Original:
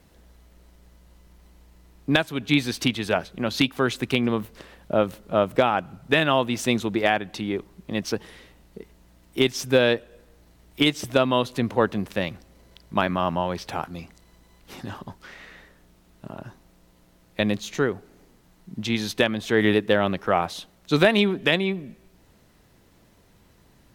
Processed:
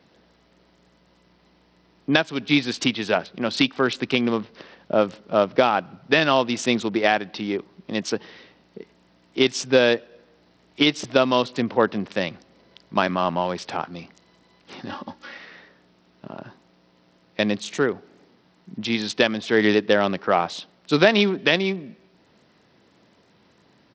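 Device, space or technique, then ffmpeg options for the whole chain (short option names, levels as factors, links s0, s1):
Bluetooth headset: -filter_complex "[0:a]asettb=1/sr,asplit=3[s0][s1][s2];[s0]atrim=end=14.894[s3];[s1]atrim=start=14.89:end=15.38,asetpts=PTS-STARTPTS,afade=t=in:d=0.004:c=qsin,afade=t=out:st=0.486:d=0.004:c=qsin,aecho=1:1:3.6:0.99,atrim=end_sample=21609[s4];[s2]atrim=start=15.376[s5];[s3][s4]acrossfade=d=0.004:c1=hsin:c2=qsin[s6];[s6][s5]acrossfade=d=0.004:c1=qsin:c2=hsin,highpass=170,aresample=16000,aresample=44100,volume=1.26" -ar 44100 -c:a sbc -b:a 64k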